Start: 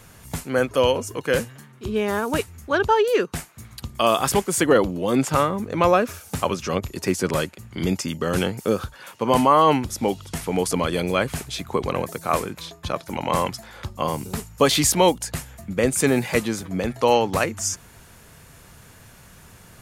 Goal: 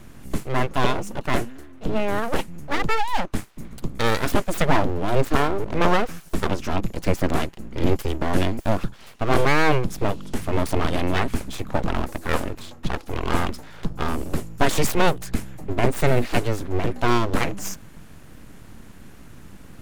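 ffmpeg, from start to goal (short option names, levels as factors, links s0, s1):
-af "bass=f=250:g=11,treble=f=4000:g=-5,aeval=exprs='abs(val(0))':c=same,volume=0.891"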